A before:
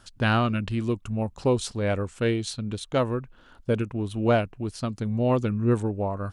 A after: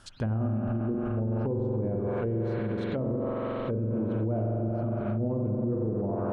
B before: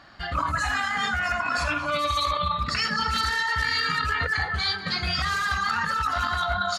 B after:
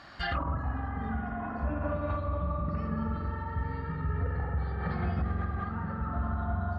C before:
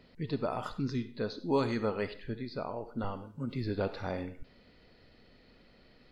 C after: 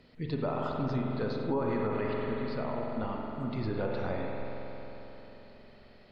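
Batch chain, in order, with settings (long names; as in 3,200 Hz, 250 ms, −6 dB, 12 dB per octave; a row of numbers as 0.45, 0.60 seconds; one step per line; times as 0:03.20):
spring reverb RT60 4 s, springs 45 ms, chirp 65 ms, DRR −0.5 dB
treble cut that deepens with the level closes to 430 Hz, closed at −19.5 dBFS
brickwall limiter −22 dBFS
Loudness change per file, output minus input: −3.5, −8.5, +1.5 LU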